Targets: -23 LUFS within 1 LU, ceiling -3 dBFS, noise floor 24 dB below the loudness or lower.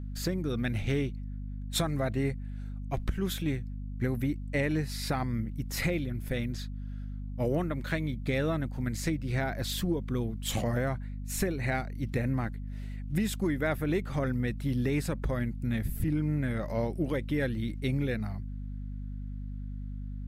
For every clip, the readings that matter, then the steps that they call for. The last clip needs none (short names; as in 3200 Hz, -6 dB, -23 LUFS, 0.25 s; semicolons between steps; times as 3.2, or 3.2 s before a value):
hum 50 Hz; harmonics up to 250 Hz; hum level -35 dBFS; loudness -32.5 LUFS; peak -16.0 dBFS; loudness target -23.0 LUFS
-> notches 50/100/150/200/250 Hz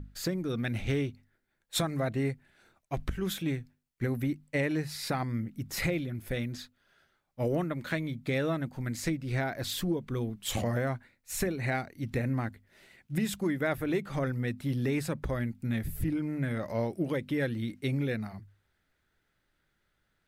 hum none; loudness -33.0 LUFS; peak -17.5 dBFS; loudness target -23.0 LUFS
-> gain +10 dB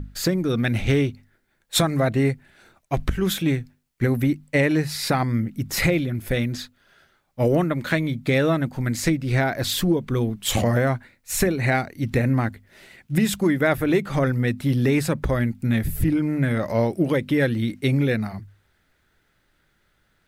loudness -23.0 LUFS; peak -7.5 dBFS; noise floor -67 dBFS